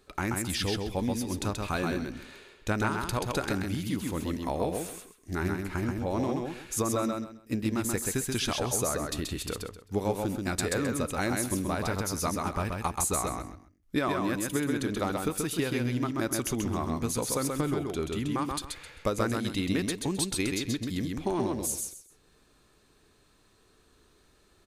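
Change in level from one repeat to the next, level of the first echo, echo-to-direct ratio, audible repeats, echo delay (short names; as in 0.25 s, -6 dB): -12.5 dB, -3.5 dB, -3.0 dB, 3, 0.131 s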